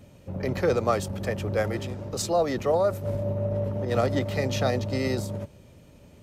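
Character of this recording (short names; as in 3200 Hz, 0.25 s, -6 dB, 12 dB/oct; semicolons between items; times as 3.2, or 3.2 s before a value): noise floor -52 dBFS; spectral tilt -6.0 dB/oct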